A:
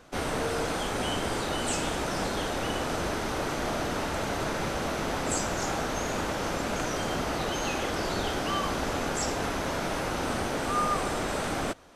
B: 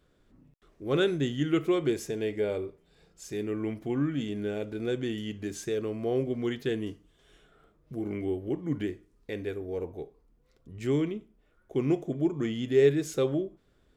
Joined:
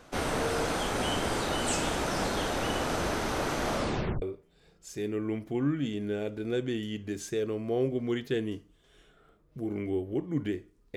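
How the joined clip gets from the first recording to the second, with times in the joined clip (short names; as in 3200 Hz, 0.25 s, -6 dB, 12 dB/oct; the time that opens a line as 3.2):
A
3.74 tape stop 0.48 s
4.22 switch to B from 2.57 s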